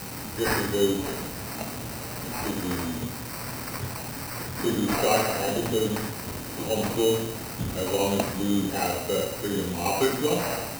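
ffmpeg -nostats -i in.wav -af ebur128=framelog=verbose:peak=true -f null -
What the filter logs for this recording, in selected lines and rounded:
Integrated loudness:
  I:         -27.4 LUFS
  Threshold: -37.4 LUFS
Loudness range:
  LRA:         5.4 LU
  Threshold: -47.6 LUFS
  LRA low:   -31.5 LUFS
  LRA high:  -26.1 LUFS
True peak:
  Peak:      -10.0 dBFS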